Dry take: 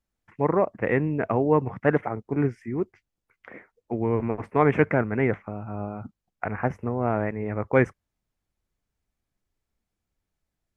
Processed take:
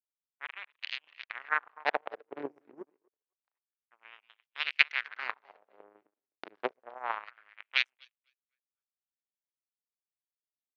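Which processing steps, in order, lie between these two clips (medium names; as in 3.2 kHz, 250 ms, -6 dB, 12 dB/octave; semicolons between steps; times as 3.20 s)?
two-band feedback delay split 330 Hz, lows 114 ms, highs 253 ms, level -7.5 dB; power-law waveshaper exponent 3; LFO high-pass sine 0.28 Hz 320–3100 Hz; trim +5.5 dB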